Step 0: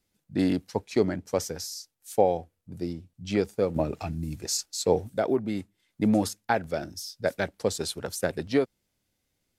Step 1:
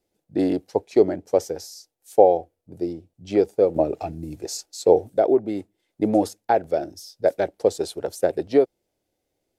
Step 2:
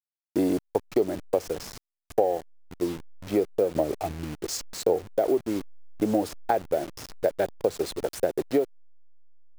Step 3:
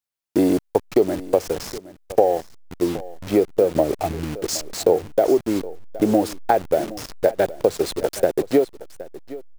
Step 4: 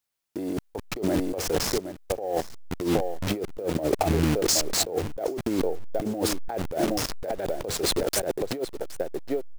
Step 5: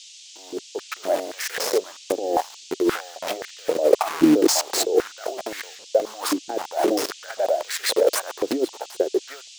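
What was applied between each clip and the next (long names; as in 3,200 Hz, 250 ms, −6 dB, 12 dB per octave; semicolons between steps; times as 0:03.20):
flat-topped bell 500 Hz +11.5 dB; level −3.5 dB
hold until the input has moved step −33 dBFS; downward compressor 4 to 1, threshold −20 dBFS, peak gain reduction 10.5 dB
single-tap delay 768 ms −17.5 dB; level +6.5 dB
compressor whose output falls as the input rises −26 dBFS, ratio −1
fade in at the beginning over 1.27 s; noise in a band 2,700–7,400 Hz −46 dBFS; high-pass on a step sequencer 3.8 Hz 300–1,800 Hz; level +1 dB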